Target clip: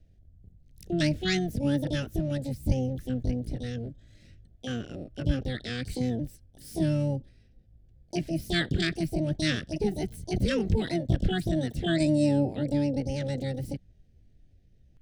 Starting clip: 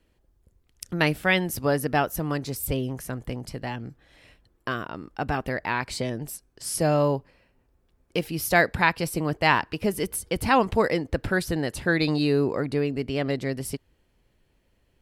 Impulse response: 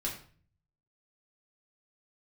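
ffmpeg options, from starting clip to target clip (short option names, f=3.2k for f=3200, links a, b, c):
-filter_complex "[0:a]asuperstop=centerf=730:order=8:qfactor=0.6,aemphasis=mode=reproduction:type=bsi,asplit=3[a][b][c];[b]asetrate=33038,aresample=44100,atempo=1.33484,volume=-15dB[d];[c]asetrate=88200,aresample=44100,atempo=0.5,volume=0dB[e];[a][d][e]amix=inputs=3:normalize=0,volume=-8dB"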